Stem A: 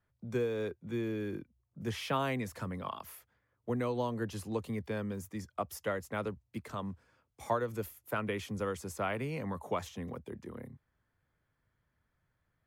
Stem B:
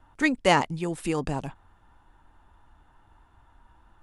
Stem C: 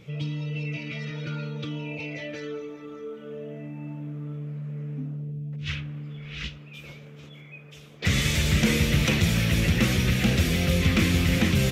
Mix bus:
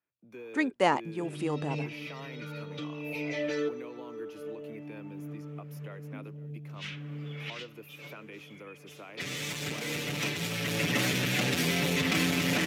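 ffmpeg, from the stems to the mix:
-filter_complex "[0:a]equalizer=f=315:t=o:w=0.33:g=8,equalizer=f=2.5k:t=o:w=0.33:g=11,equalizer=f=8k:t=o:w=0.33:g=-10,equalizer=f=12.5k:t=o:w=0.33:g=3,alimiter=level_in=1.5dB:limit=-24dB:level=0:latency=1,volume=-1.5dB,volume=-10.5dB,asplit=3[a][b][c];[b]volume=-23dB[d];[1:a]highshelf=f=2.4k:g=-8.5,adelay=350,volume=-3dB[e];[2:a]asoftclip=type=tanh:threshold=-23.5dB,aecho=1:1:6.9:0.65,adelay=1150,volume=2dB[f];[c]apad=whole_len=567591[g];[f][g]sidechaincompress=threshold=-50dB:ratio=8:attack=8.7:release=613[h];[d]aecho=0:1:517:1[i];[a][e][h][i]amix=inputs=4:normalize=0,highpass=220"

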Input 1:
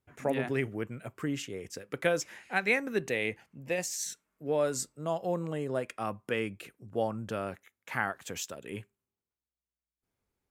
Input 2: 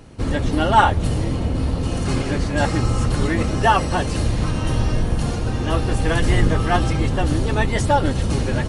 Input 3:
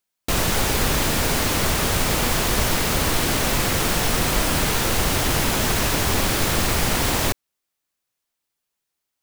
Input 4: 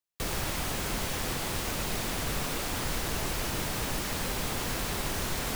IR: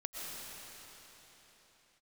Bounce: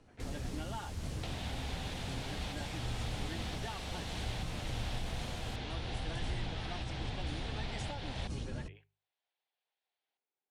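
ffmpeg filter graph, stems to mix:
-filter_complex "[0:a]asubboost=boost=7:cutoff=190,acompressor=threshold=-30dB:ratio=6,alimiter=level_in=5.5dB:limit=-24dB:level=0:latency=1,volume=-5.5dB,volume=-8dB,asplit=2[a][b];[1:a]alimiter=limit=-8dB:level=0:latency=1:release=262,volume=-18dB[c];[2:a]adelay=950,volume=-5dB[d];[3:a]volume=-15dB[e];[b]apad=whole_len=448592[f];[d][f]sidechaincompress=threshold=-49dB:ratio=8:attack=16:release=608[g];[a][g]amix=inputs=2:normalize=0,highpass=f=430:w=0.5412,highpass=f=430:w=1.3066,equalizer=f=760:t=q:w=4:g=7,equalizer=f=1.2k:t=q:w=4:g=-6,equalizer=f=3.5k:t=q:w=4:g=3,lowpass=f=4k:w=0.5412,lowpass=f=4k:w=1.3066,acompressor=threshold=-38dB:ratio=6,volume=0dB[h];[c][e][h]amix=inputs=3:normalize=0,lowpass=8.8k,bandreject=f=50:t=h:w=6,bandreject=f=100:t=h:w=6,bandreject=f=150:t=h:w=6,acrossover=split=230|3000[i][j][k];[j]acompressor=threshold=-49dB:ratio=2[l];[i][l][k]amix=inputs=3:normalize=0"

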